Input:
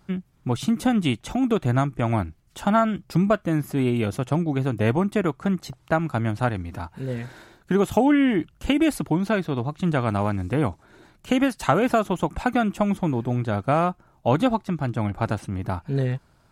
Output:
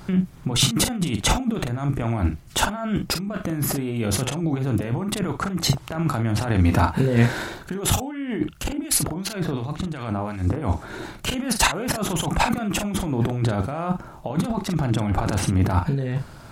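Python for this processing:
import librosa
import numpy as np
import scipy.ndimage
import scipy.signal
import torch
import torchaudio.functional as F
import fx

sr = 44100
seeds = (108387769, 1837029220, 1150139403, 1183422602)

y = fx.over_compress(x, sr, threshold_db=-32.0, ratio=-1.0)
y = fx.harmonic_tremolo(y, sr, hz=2.8, depth_pct=70, crossover_hz=1600.0, at=(8.39, 10.62))
y = fx.doubler(y, sr, ms=43.0, db=-7.5)
y = F.gain(torch.from_numpy(y), 8.0).numpy()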